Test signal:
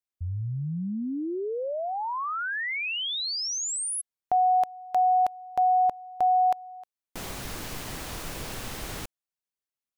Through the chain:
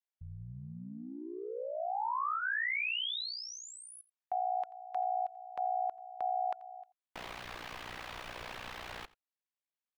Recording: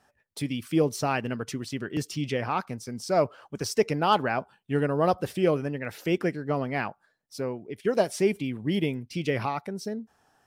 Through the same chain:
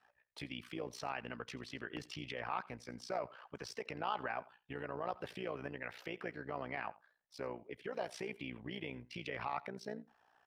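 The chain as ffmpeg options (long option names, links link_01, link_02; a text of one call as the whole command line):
ffmpeg -i in.wav -filter_complex "[0:a]adynamicequalizer=threshold=0.00631:dfrequency=580:dqfactor=6.8:tfrequency=580:tqfactor=6.8:attack=5:release=100:ratio=0.375:range=1.5:mode=cutabove:tftype=bell,acompressor=threshold=-29dB:ratio=1.5:attack=9.7:release=43:knee=1:detection=rms,tremolo=f=60:d=0.824,alimiter=level_in=1dB:limit=-24dB:level=0:latency=1:release=129,volume=-1dB,acrossover=split=580 3900:gain=0.251 1 0.112[link_01][link_02][link_03];[link_01][link_02][link_03]amix=inputs=3:normalize=0,bandreject=frequency=1400:width=28,asplit=2[link_04][link_05];[link_05]aecho=0:1:86:0.0841[link_06];[link_04][link_06]amix=inputs=2:normalize=0,volume=1dB" out.wav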